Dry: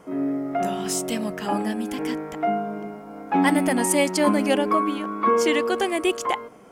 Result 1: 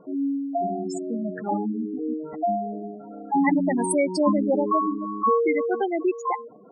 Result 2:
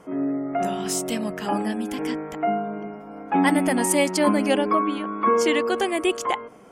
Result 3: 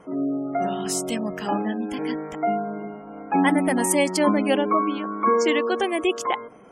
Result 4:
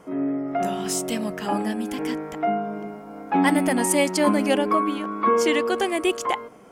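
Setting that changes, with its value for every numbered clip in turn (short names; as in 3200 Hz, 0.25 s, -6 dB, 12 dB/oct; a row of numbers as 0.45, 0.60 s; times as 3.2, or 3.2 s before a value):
spectral gate, under each frame's peak: -10, -45, -30, -60 dB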